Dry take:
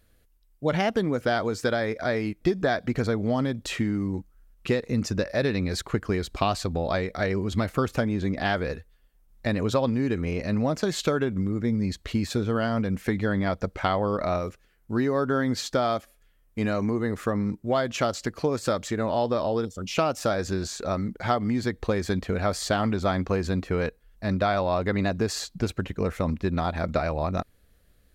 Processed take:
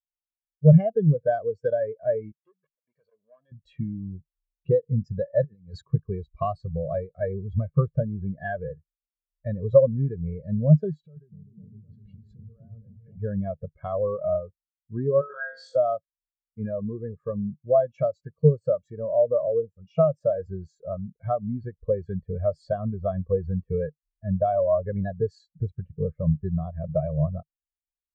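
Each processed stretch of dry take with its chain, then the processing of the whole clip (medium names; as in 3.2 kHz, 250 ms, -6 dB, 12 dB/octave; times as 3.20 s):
2.32–3.52 s: high-pass 1.1 kHz 6 dB/octave + integer overflow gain 20.5 dB + transformer saturation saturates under 1.9 kHz
5.44–5.90 s: high-pass 78 Hz + compressor with a negative ratio -31 dBFS, ratio -0.5 + tape noise reduction on one side only decoder only
10.91–13.17 s: compression 12:1, threshold -33 dBFS + delay with an opening low-pass 254 ms, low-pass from 400 Hz, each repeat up 1 oct, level 0 dB
15.21–15.76 s: high-pass 660 Hz + flutter echo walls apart 3.6 m, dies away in 0.91 s
whole clip: peaking EQ 150 Hz +11.5 dB 0.24 oct; comb 1.8 ms, depth 44%; spectral contrast expander 2.5:1; trim +4 dB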